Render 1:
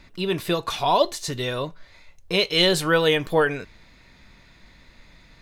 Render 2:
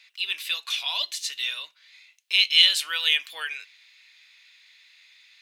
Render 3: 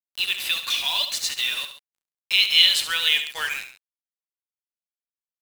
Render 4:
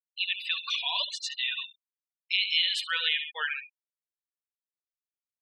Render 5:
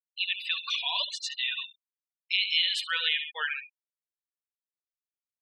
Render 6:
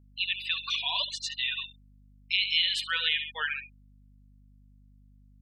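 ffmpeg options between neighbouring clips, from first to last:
ffmpeg -i in.wav -af "highpass=frequency=2700:width_type=q:width=2.1,volume=-1dB" out.wav
ffmpeg -i in.wav -filter_complex "[0:a]asplit=2[link_01][link_02];[link_02]acompressor=threshold=-30dB:ratio=6,volume=2dB[link_03];[link_01][link_03]amix=inputs=2:normalize=0,acrusher=bits=4:mix=0:aa=0.5,aecho=1:1:69|136:0.316|0.178,volume=-1dB" out.wav
ffmpeg -i in.wav -af "afftfilt=real='re*gte(hypot(re,im),0.0501)':imag='im*gte(hypot(re,im),0.0501)':win_size=1024:overlap=0.75,lowpass=frequency=2600:poles=1,acompressor=threshold=-20dB:ratio=6,volume=-1.5dB" out.wav
ffmpeg -i in.wav -af anull out.wav
ffmpeg -i in.wav -af "aeval=exprs='val(0)+0.00158*(sin(2*PI*50*n/s)+sin(2*PI*2*50*n/s)/2+sin(2*PI*3*50*n/s)/3+sin(2*PI*4*50*n/s)/4+sin(2*PI*5*50*n/s)/5)':channel_layout=same" out.wav

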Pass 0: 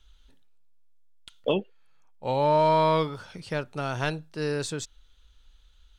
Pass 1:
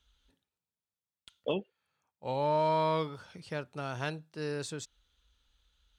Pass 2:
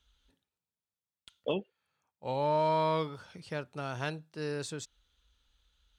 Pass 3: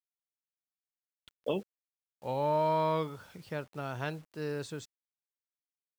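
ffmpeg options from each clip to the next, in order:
ffmpeg -i in.wav -af "highpass=56,volume=-7dB" out.wav
ffmpeg -i in.wav -af anull out.wav
ffmpeg -i in.wav -af "highshelf=frequency=3800:gain=-8.5,acrusher=bits=9:mix=0:aa=0.000001" out.wav

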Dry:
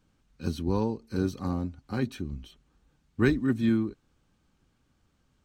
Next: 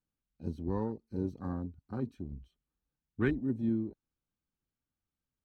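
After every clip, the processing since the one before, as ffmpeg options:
ffmpeg -i in.wav -af "afwtdn=0.0158,volume=-6.5dB" out.wav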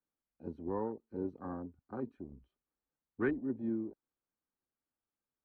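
ffmpeg -i in.wav -filter_complex "[0:a]acrossover=split=270 2000:gain=0.2 1 0.0708[link_01][link_02][link_03];[link_01][link_02][link_03]amix=inputs=3:normalize=0,volume=1dB" out.wav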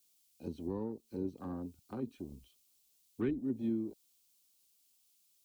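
ffmpeg -i in.wav -filter_complex "[0:a]acrossover=split=360[link_01][link_02];[link_02]acompressor=threshold=-50dB:ratio=5[link_03];[link_01][link_03]amix=inputs=2:normalize=0,aexciter=amount=10.8:drive=3.5:freq=2500,volume=2.5dB" out.wav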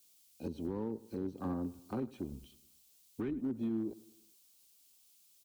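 ffmpeg -i in.wav -af "alimiter=level_in=9.5dB:limit=-24dB:level=0:latency=1:release=206,volume=-9.5dB,asoftclip=type=hard:threshold=-35dB,aecho=1:1:106|212|318|424:0.1|0.05|0.025|0.0125,volume=5.5dB" out.wav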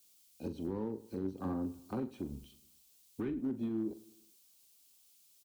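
ffmpeg -i in.wav -filter_complex "[0:a]asplit=2[link_01][link_02];[link_02]adelay=42,volume=-11.5dB[link_03];[link_01][link_03]amix=inputs=2:normalize=0" out.wav

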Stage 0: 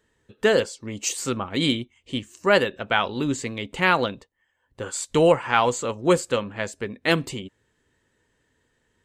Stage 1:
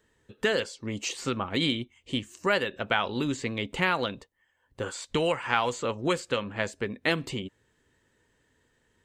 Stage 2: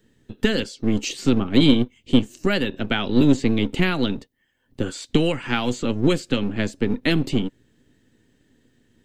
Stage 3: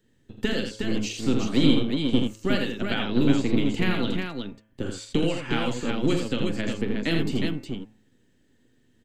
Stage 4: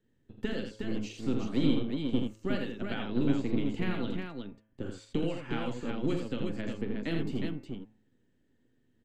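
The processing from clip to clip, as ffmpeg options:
ffmpeg -i in.wav -filter_complex "[0:a]acrossover=split=1400|4900[link_01][link_02][link_03];[link_01]acompressor=threshold=-26dB:ratio=4[link_04];[link_02]acompressor=threshold=-26dB:ratio=4[link_05];[link_03]acompressor=threshold=-48dB:ratio=4[link_06];[link_04][link_05][link_06]amix=inputs=3:normalize=0" out.wav
ffmpeg -i in.wav -filter_complex "[0:a]equalizer=frequency=125:width_type=o:width=1:gain=6,equalizer=frequency=250:width_type=o:width=1:gain=12,equalizer=frequency=500:width_type=o:width=1:gain=-6,equalizer=frequency=1000:width_type=o:width=1:gain=-12,equalizer=frequency=2000:width_type=o:width=1:gain=-4,equalizer=frequency=8000:width_type=o:width=1:gain=-6,acrossover=split=320[link_01][link_02];[link_01]aeval=exprs='max(val(0),0)':channel_layout=same[link_03];[link_03][link_02]amix=inputs=2:normalize=0,volume=8dB" out.wav
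ffmpeg -i in.wav -filter_complex "[0:a]bandreject=frequency=108:width_type=h:width=4,bandreject=frequency=216:width_type=h:width=4,bandreject=frequency=324:width_type=h:width=4,bandreject=frequency=432:width_type=h:width=4,bandreject=frequency=540:width_type=h:width=4,bandreject=frequency=648:width_type=h:width=4,bandreject=frequency=756:width_type=h:width=4,bandreject=frequency=864:width_type=h:width=4,bandreject=frequency=972:width_type=h:width=4,bandreject=frequency=1080:width_type=h:width=4,bandreject=frequency=1188:width_type=h:width=4,bandreject=frequency=1296:width_type=h:width=4,bandreject=frequency=1404:width_type=h:width=4,bandreject=frequency=1512:width_type=h:width=4,bandreject=frequency=1620:width_type=h:width=4,bandreject=frequency=1728:width_type=h:width=4,bandreject=frequency=1836:width_type=h:width=4,bandreject=frequency=1944:width_type=h:width=4,bandreject=frequency=2052:width_type=h:width=4,bandreject=frequency=2160:width_type=h:width=4,bandreject=frequency=2268:width_type=h:width=4,bandreject=frequency=2376:width_type=h:width=4,bandreject=frequency=2484:width_type=h:width=4,bandreject=frequency=2592:width_type=h:width=4,bandreject=frequency=2700:width_type=h:width=4,asplit=2[link_01][link_02];[link_02]aecho=0:1:42|81|362:0.355|0.531|0.562[link_03];[link_01][link_03]amix=inputs=2:normalize=0,volume=-6dB" out.wav
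ffmpeg -i in.wav -af "highshelf=frequency=2700:gain=-9.5,volume=-7dB" out.wav

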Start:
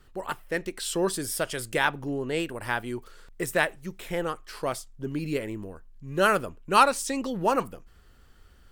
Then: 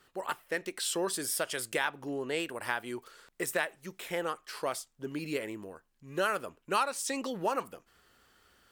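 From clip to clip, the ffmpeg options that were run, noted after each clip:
ffmpeg -i in.wav -af "highpass=frequency=480:poles=1,acompressor=threshold=-28dB:ratio=3" out.wav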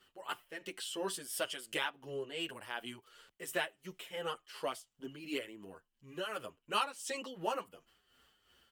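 ffmpeg -i in.wav -filter_complex "[0:a]equalizer=frequency=3000:width_type=o:width=0.24:gain=11.5,tremolo=f=2.8:d=0.62,asplit=2[link_01][link_02];[link_02]adelay=7.9,afreqshift=-2.6[link_03];[link_01][link_03]amix=inputs=2:normalize=1,volume=-1.5dB" out.wav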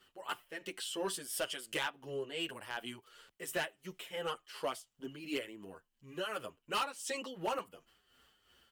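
ffmpeg -i in.wav -af "asoftclip=type=hard:threshold=-29dB,volume=1dB" out.wav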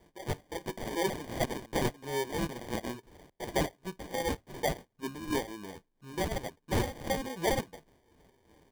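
ffmpeg -i in.wav -filter_complex "[0:a]asplit=2[link_01][link_02];[link_02]adynamicsmooth=sensitivity=6:basefreq=7900,volume=1dB[link_03];[link_01][link_03]amix=inputs=2:normalize=0,acrusher=samples=33:mix=1:aa=0.000001" out.wav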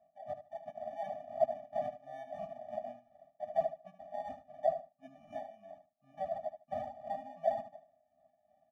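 ffmpeg -i in.wav -af "bandpass=frequency=640:width_type=q:width=5.9:csg=0,aecho=1:1:75|150:0.282|0.0507,afftfilt=real='re*eq(mod(floor(b*sr/1024/280),2),0)':imag='im*eq(mod(floor(b*sr/1024/280),2),0)':win_size=1024:overlap=0.75,volume=7dB" out.wav

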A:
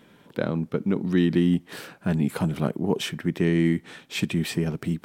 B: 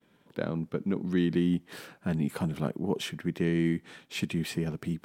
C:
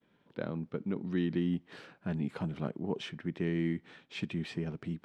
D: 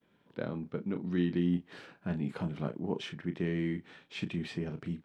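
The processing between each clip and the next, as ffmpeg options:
ffmpeg -i in.wav -af "agate=range=-33dB:threshold=-49dB:ratio=3:detection=peak,volume=-5.5dB" out.wav
ffmpeg -i in.wav -af "lowpass=4300,volume=-5dB" out.wav
ffmpeg -i in.wav -filter_complex "[0:a]asplit=2[link_01][link_02];[link_02]adelay=34,volume=-9dB[link_03];[link_01][link_03]amix=inputs=2:normalize=0" out.wav

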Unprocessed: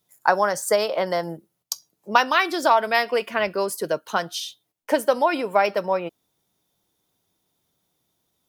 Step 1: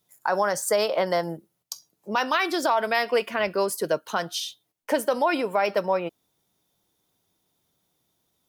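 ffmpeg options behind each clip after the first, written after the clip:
ffmpeg -i in.wav -af "alimiter=limit=-12.5dB:level=0:latency=1:release=49" out.wav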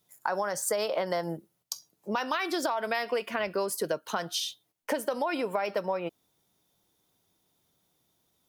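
ffmpeg -i in.wav -af "acompressor=threshold=-26dB:ratio=6" out.wav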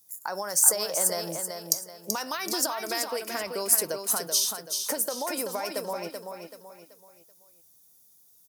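ffmpeg -i in.wav -filter_complex "[0:a]aexciter=amount=8:drive=2.2:freq=4700,asplit=2[link_01][link_02];[link_02]aecho=0:1:382|764|1146|1528:0.501|0.185|0.0686|0.0254[link_03];[link_01][link_03]amix=inputs=2:normalize=0,volume=-3.5dB" out.wav

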